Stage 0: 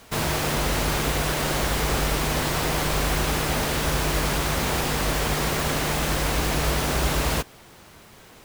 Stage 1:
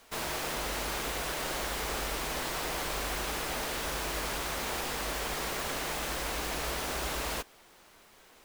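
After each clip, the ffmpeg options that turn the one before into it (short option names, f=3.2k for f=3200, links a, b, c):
-af "equalizer=f=110:t=o:w=1.9:g=-14,volume=-8dB"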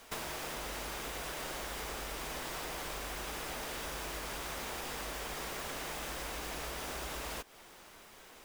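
-af "acompressor=threshold=-40dB:ratio=12,bandreject=f=4.2k:w=25,volume=3dB"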